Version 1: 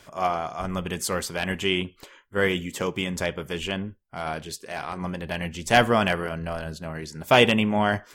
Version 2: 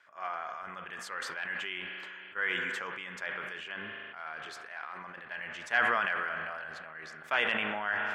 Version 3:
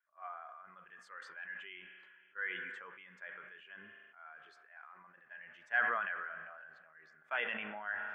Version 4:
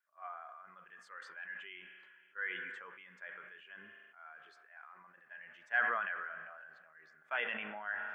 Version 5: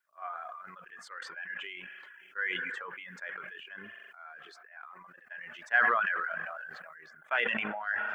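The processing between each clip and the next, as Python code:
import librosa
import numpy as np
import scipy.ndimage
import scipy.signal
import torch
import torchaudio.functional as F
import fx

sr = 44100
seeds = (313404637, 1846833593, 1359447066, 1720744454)

y1 = fx.bandpass_q(x, sr, hz=1600.0, q=2.6)
y1 = fx.rev_spring(y1, sr, rt60_s=3.0, pass_ms=(38,), chirp_ms=25, drr_db=12.5)
y1 = fx.sustainer(y1, sr, db_per_s=20.0)
y1 = y1 * 10.0 ** (-4.0 / 20.0)
y2 = fx.spectral_expand(y1, sr, expansion=1.5)
y2 = y2 * 10.0 ** (-6.0 / 20.0)
y3 = scipy.signal.sosfilt(scipy.signal.butter(2, 74.0, 'highpass', fs=sr, output='sos'), y2)
y3 = fx.low_shelf(y3, sr, hz=130.0, db=-4.0)
y4 = fx.dereverb_blind(y3, sr, rt60_s=0.69)
y4 = fx.transient(y4, sr, attack_db=4, sustain_db=-5)
y4 = fx.sustainer(y4, sr, db_per_s=24.0)
y4 = y4 * 10.0 ** (3.5 / 20.0)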